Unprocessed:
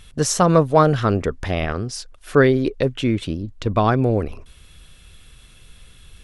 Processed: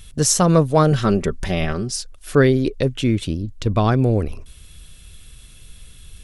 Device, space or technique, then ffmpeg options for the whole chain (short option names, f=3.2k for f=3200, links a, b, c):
smiley-face EQ: -filter_complex "[0:a]asettb=1/sr,asplit=3[a][b][c];[a]atrim=end=0.914[d];[b]atrim=start=0.91:end=1.96,asetpts=PTS-STARTPTS,afade=t=in:d=0.004:c=qsin,afade=t=out:st=1.046:d=0.004:c=qsin,aecho=1:1:5.2:0.58,atrim=end_sample=46305[e];[c]atrim=start=1.956[f];[d][e]acrossfade=d=0.004:c1=hsin:c2=qsin[g];[g][f]acrossfade=d=0.004:c1=qsin:c2=hsin,lowshelf=f=180:g=4.5,equalizer=f=1.1k:t=o:w=2.3:g=-3.5,highshelf=f=5.4k:g=8.5"